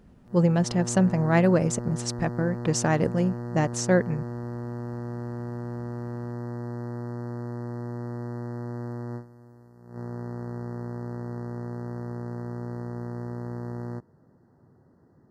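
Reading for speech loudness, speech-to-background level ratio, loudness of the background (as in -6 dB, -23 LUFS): -24.5 LUFS, 10.5 dB, -35.0 LUFS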